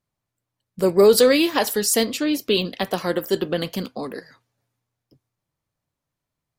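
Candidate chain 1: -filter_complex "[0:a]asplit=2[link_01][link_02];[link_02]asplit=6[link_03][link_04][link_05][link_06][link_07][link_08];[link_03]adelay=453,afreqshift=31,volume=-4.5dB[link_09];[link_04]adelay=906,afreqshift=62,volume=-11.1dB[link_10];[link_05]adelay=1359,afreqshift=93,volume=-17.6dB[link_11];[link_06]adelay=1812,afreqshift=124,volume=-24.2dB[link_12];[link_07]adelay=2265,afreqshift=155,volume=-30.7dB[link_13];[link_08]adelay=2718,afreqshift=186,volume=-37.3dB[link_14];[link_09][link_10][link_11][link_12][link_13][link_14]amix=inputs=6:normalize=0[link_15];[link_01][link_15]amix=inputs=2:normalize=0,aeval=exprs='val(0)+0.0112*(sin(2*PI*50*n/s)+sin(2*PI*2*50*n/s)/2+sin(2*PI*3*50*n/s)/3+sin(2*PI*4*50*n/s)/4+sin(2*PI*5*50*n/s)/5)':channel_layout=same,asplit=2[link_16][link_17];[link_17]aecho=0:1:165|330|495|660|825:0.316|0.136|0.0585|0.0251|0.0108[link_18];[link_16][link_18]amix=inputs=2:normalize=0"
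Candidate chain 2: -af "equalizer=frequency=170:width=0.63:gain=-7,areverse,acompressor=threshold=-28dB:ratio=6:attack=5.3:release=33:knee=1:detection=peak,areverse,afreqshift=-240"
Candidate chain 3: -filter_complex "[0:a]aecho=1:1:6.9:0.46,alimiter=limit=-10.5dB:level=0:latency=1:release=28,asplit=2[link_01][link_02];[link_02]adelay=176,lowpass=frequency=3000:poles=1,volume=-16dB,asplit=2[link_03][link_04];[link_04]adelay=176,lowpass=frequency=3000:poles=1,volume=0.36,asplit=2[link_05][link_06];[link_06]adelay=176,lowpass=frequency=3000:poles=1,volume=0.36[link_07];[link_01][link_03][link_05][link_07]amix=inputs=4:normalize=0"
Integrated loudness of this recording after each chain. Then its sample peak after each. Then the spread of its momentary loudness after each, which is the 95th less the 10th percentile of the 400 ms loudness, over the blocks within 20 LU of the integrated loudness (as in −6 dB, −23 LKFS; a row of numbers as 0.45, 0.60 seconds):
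−18.5, −30.5, −21.5 LKFS; −3.5, −15.5, −9.5 dBFS; 18, 8, 11 LU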